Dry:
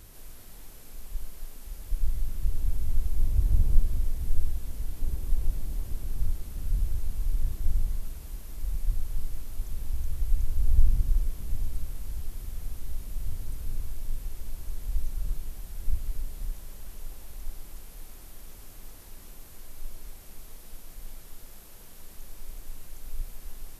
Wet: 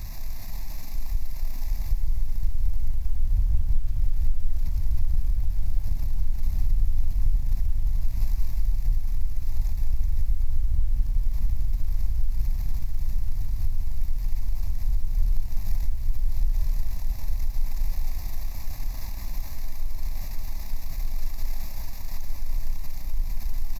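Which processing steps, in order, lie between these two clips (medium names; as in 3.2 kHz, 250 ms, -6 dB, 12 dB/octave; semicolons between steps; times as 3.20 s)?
power-law waveshaper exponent 0.7; echo from a far wall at 240 m, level -7 dB; compression 5:1, threshold -23 dBFS, peak gain reduction 14 dB; bass shelf 110 Hz +6 dB; static phaser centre 2.1 kHz, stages 8; bit-crushed delay 175 ms, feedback 80%, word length 8-bit, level -13 dB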